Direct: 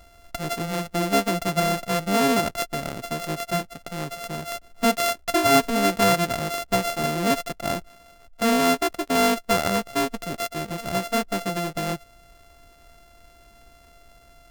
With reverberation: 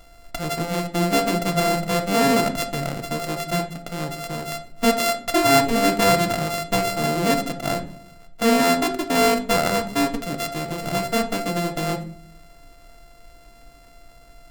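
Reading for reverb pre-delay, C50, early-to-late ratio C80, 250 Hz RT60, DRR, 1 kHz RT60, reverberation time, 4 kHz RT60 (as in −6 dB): 4 ms, 12.5 dB, 17.0 dB, 0.85 s, 5.0 dB, 0.45 s, 0.55 s, 0.30 s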